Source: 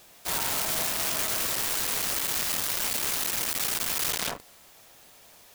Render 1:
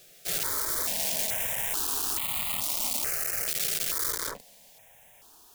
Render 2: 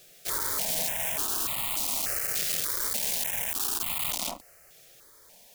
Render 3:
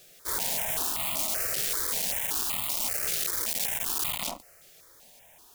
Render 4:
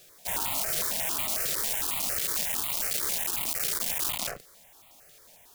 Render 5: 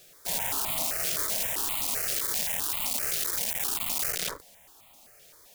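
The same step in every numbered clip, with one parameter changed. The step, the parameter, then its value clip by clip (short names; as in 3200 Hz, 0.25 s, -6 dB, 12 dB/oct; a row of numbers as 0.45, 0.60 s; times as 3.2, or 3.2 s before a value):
step phaser, rate: 2.3, 3.4, 5.2, 11, 7.7 Hz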